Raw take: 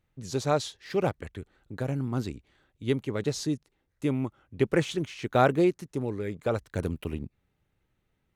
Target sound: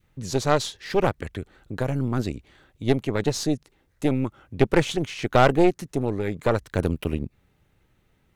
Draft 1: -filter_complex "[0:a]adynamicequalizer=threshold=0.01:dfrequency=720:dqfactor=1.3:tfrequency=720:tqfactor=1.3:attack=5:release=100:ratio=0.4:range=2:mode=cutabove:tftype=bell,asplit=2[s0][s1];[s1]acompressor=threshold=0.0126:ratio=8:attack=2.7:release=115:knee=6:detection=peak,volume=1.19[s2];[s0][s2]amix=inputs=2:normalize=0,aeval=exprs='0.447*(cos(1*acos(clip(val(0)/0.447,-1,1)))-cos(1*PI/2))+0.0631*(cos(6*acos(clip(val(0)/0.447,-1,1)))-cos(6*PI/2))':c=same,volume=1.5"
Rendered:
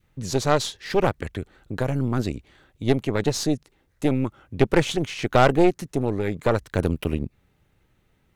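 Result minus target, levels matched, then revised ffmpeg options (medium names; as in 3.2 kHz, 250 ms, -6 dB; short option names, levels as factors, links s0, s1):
compression: peak gain reduction -6 dB
-filter_complex "[0:a]adynamicequalizer=threshold=0.01:dfrequency=720:dqfactor=1.3:tfrequency=720:tqfactor=1.3:attack=5:release=100:ratio=0.4:range=2:mode=cutabove:tftype=bell,asplit=2[s0][s1];[s1]acompressor=threshold=0.00562:ratio=8:attack=2.7:release=115:knee=6:detection=peak,volume=1.19[s2];[s0][s2]amix=inputs=2:normalize=0,aeval=exprs='0.447*(cos(1*acos(clip(val(0)/0.447,-1,1)))-cos(1*PI/2))+0.0631*(cos(6*acos(clip(val(0)/0.447,-1,1)))-cos(6*PI/2))':c=same,volume=1.5"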